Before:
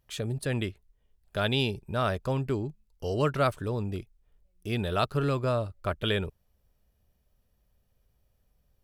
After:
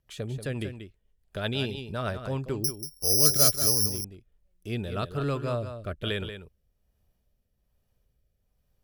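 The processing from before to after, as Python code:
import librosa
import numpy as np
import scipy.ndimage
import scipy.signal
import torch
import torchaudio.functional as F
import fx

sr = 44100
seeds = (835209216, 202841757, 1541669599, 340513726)

y = fx.rotary_switch(x, sr, hz=8.0, then_hz=1.2, switch_at_s=2.19)
y = fx.resample_bad(y, sr, factor=8, down='filtered', up='zero_stuff', at=(2.64, 3.86))
y = y + 10.0 ** (-9.5 / 20.0) * np.pad(y, (int(185 * sr / 1000.0), 0))[:len(y)]
y = F.gain(torch.from_numpy(y), -1.0).numpy()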